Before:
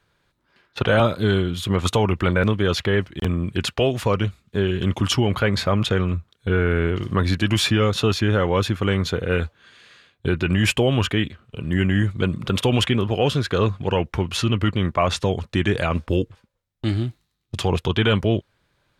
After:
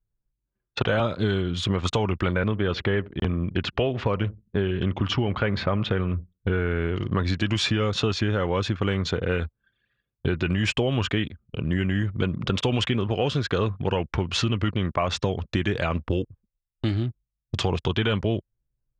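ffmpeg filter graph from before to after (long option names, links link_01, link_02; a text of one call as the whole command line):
ffmpeg -i in.wav -filter_complex "[0:a]asettb=1/sr,asplit=3[link_01][link_02][link_03];[link_01]atrim=end=2.414[link_04];[link_02]atrim=start=2.41:end=6.53,asetpts=PTS-STARTPTS,afade=type=in:duration=0.004:curve=qsin,afade=type=out:start_time=4.116:duration=0.004:curve=qsin,lowpass=3300,asplit=2[link_05][link_06];[link_06]adelay=83,lowpass=frequency=850:poles=1,volume=-21dB,asplit=2[link_07][link_08];[link_08]adelay=83,lowpass=frequency=850:poles=1,volume=0.36,asplit=2[link_09][link_10];[link_10]adelay=83,lowpass=frequency=850:poles=1,volume=0.36[link_11];[link_05][link_07][link_09][link_11]amix=inputs=4:normalize=0,atrim=end_sample=181692[link_12];[link_03]atrim=start=6.526[link_13];[link_04][link_12]acrossfade=duration=0.004:curve1=hsin:curve2=qsin[link_14];[link_14][link_13]acrossfade=duration=0.004:curve1=qsin:curve2=hsin,lowpass=frequency=6900:width=0.5412,lowpass=frequency=6900:width=1.3066,anlmdn=1,acompressor=threshold=-23dB:ratio=4,volume=2dB" out.wav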